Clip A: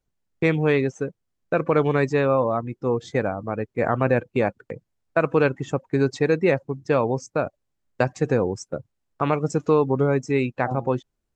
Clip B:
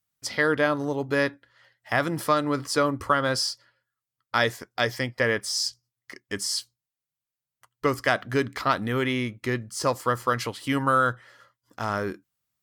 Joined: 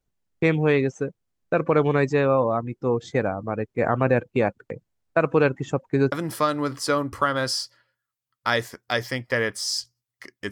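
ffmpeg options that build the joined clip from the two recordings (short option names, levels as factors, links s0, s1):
-filter_complex "[0:a]apad=whole_dur=10.51,atrim=end=10.51,atrim=end=6.122[s0];[1:a]atrim=start=1.998:end=6.39[s1];[s0][s1]acrossfade=d=0.004:c1=hsin:c2=hsin"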